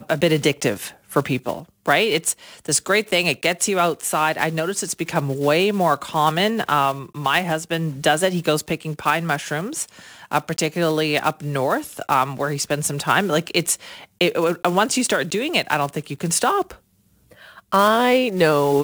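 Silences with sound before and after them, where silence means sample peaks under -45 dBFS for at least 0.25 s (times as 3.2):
16.79–17.3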